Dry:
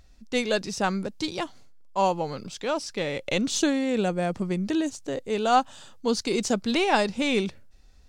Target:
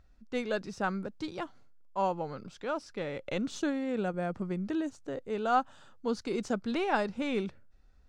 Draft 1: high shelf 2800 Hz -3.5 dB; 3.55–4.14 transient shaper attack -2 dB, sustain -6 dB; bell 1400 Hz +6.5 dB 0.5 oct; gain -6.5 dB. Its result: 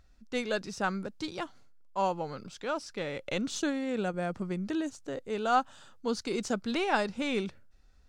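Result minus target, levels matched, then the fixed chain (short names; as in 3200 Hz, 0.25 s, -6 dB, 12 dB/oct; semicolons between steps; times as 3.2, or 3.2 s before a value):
4000 Hz band +4.5 dB
high shelf 2800 Hz -12 dB; 3.55–4.14 transient shaper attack -2 dB, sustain -6 dB; bell 1400 Hz +6.5 dB 0.5 oct; gain -6.5 dB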